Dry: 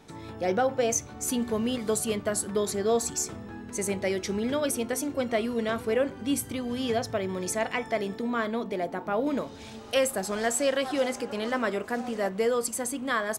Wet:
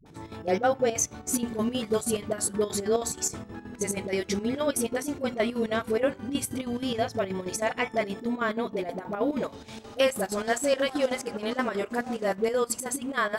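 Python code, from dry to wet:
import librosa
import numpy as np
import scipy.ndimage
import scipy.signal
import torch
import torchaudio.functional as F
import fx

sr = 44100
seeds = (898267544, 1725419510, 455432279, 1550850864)

y = fx.dispersion(x, sr, late='highs', ms=60.0, hz=410.0)
y = fx.chopper(y, sr, hz=6.3, depth_pct=65, duty_pct=65)
y = y * librosa.db_to_amplitude(1.5)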